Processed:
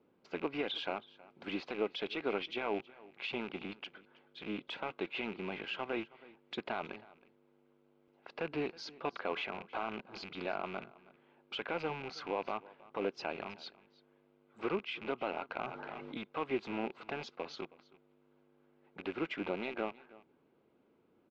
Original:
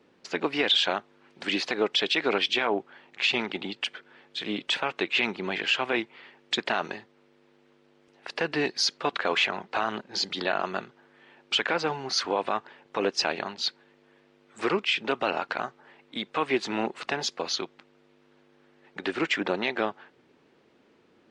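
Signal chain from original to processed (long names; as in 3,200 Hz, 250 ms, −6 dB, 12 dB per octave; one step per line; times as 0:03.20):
loose part that buzzes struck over −46 dBFS, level −20 dBFS
head-to-tape spacing loss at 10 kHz 31 dB
notch filter 1,800 Hz, Q 6.4
on a send: single-tap delay 320 ms −21 dB
0:15.56–0:16.17: on the sum: envelope flattener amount 70%
level −7 dB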